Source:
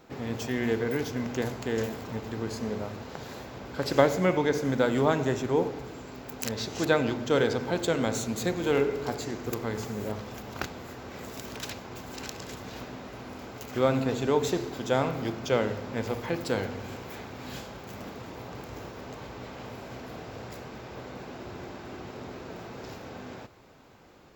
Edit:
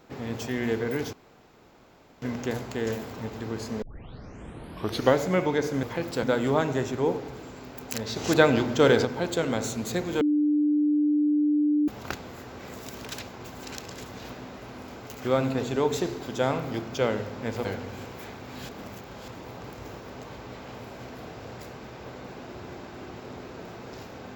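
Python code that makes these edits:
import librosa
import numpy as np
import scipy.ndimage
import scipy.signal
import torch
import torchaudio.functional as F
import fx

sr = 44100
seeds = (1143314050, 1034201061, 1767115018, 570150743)

y = fx.edit(x, sr, fx.insert_room_tone(at_s=1.13, length_s=1.09),
    fx.tape_start(start_s=2.73, length_s=1.36),
    fx.clip_gain(start_s=6.67, length_s=0.89, db=5.0),
    fx.bleep(start_s=8.72, length_s=1.67, hz=297.0, db=-19.5),
    fx.move(start_s=16.16, length_s=0.4, to_s=4.74),
    fx.reverse_span(start_s=17.6, length_s=0.59), tone=tone)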